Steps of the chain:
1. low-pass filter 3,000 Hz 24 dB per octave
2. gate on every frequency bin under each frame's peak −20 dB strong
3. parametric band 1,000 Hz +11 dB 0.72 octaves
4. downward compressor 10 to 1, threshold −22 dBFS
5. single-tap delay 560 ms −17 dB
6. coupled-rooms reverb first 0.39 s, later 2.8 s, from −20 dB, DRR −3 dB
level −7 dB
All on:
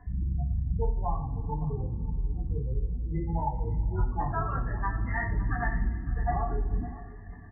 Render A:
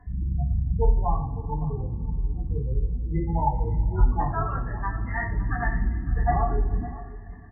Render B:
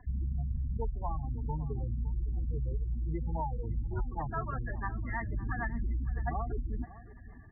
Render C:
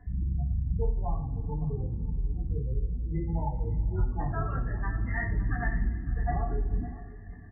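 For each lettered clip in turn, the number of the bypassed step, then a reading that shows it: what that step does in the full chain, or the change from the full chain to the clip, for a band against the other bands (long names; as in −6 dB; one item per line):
4, average gain reduction 3.5 dB
6, change in momentary loudness spread −1 LU
3, 1 kHz band −4.5 dB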